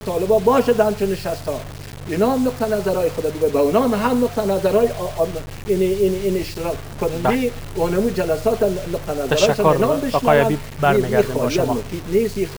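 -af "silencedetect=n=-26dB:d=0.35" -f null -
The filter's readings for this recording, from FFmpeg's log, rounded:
silence_start: 1.62
silence_end: 2.07 | silence_duration: 0.45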